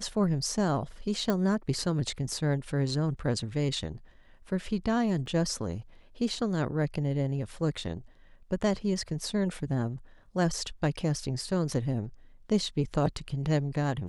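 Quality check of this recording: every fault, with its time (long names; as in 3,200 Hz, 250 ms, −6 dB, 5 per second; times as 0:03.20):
0:01.30: click −15 dBFS
0:05.26: drop-out 2.1 ms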